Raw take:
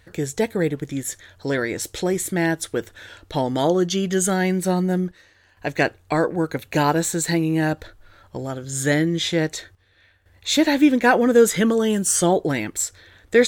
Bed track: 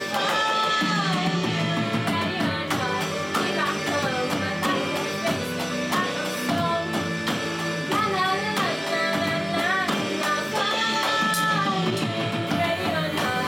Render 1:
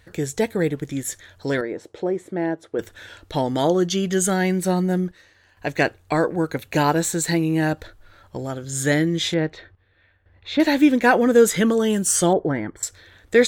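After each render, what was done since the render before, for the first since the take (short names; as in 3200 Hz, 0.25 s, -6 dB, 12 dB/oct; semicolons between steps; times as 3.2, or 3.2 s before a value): 1.61–2.79 band-pass 480 Hz, Q 0.87; 9.34–10.6 air absorption 340 m; 12.33–12.83 polynomial smoothing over 41 samples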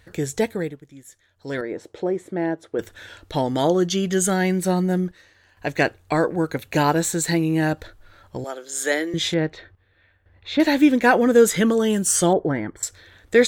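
0.43–1.73 dip -17 dB, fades 0.37 s; 8.44–9.14 HPF 370 Hz 24 dB/oct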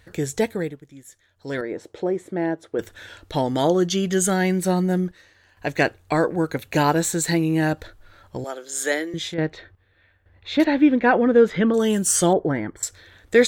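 8.82–9.38 fade out, to -9.5 dB; 10.64–11.74 air absorption 310 m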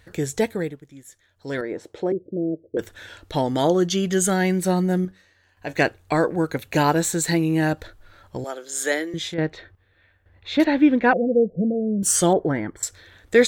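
2.12–2.77 steep low-pass 590 Hz 72 dB/oct; 5.05–5.73 resonator 94 Hz, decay 0.26 s; 11.13–12.03 rippled Chebyshev low-pass 720 Hz, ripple 9 dB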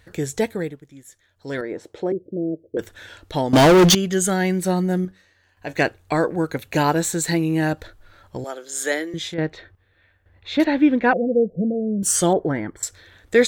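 3.53–3.95 sample leveller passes 5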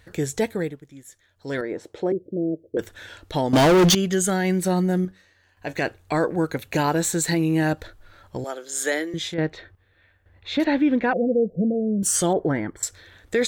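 limiter -12.5 dBFS, peak gain reduction 8 dB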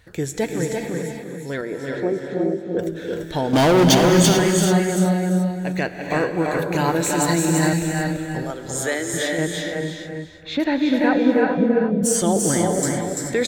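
feedback echo 0.34 s, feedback 23%, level -4 dB; non-linear reverb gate 0.46 s rising, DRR 3 dB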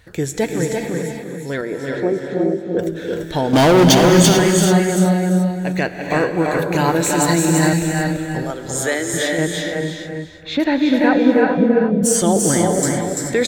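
gain +3.5 dB; limiter -1 dBFS, peak gain reduction 2 dB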